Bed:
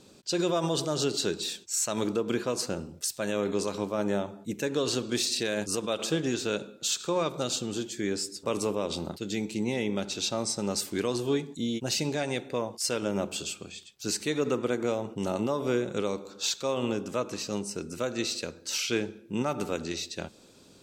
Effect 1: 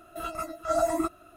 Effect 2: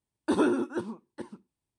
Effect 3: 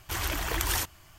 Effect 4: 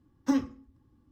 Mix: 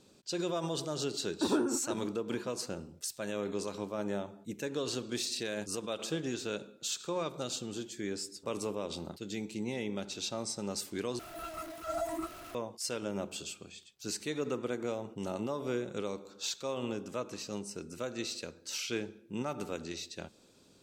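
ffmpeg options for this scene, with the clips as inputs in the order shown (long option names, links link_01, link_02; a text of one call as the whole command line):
ffmpeg -i bed.wav -i cue0.wav -i cue1.wav -filter_complex "[0:a]volume=-7dB[link_01];[2:a]equalizer=frequency=3600:width_type=o:width=1.6:gain=-7[link_02];[1:a]aeval=exprs='val(0)+0.5*0.0266*sgn(val(0))':channel_layout=same[link_03];[link_01]asplit=2[link_04][link_05];[link_04]atrim=end=11.194[link_06];[link_03]atrim=end=1.36,asetpts=PTS-STARTPTS,volume=-11.5dB[link_07];[link_05]atrim=start=12.546[link_08];[link_02]atrim=end=1.78,asetpts=PTS-STARTPTS,volume=-5dB,afade=type=in:duration=0.004:curve=hsin,afade=type=out:start_time=1.776:duration=0.004:curve=hsin,adelay=1130[link_09];[link_06][link_07]acrossfade=duration=0.004:curve1=hsin:curve2=hsin[link_10];[link_10][link_08]acrossfade=duration=0.004:curve1=hsin:curve2=hsin[link_11];[link_11][link_09]amix=inputs=2:normalize=0" out.wav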